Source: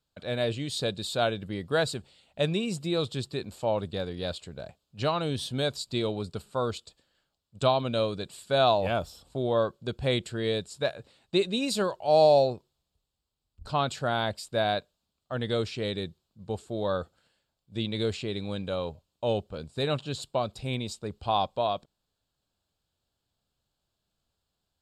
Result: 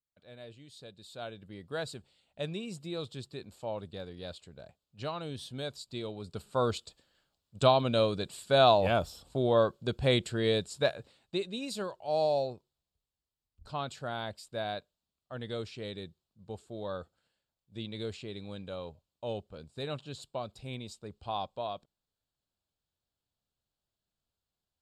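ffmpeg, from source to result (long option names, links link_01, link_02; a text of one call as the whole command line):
ffmpeg -i in.wav -af "volume=0.5dB,afade=type=in:start_time=0.92:duration=1.01:silence=0.298538,afade=type=in:start_time=6.2:duration=0.41:silence=0.316228,afade=type=out:start_time=10.86:duration=0.54:silence=0.334965" out.wav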